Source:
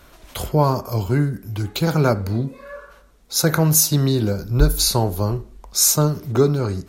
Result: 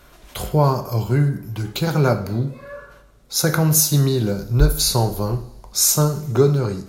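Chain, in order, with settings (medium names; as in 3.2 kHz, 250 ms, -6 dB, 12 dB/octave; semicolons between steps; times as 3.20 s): two-slope reverb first 0.57 s, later 3.2 s, from -27 dB, DRR 7.5 dB; trim -1 dB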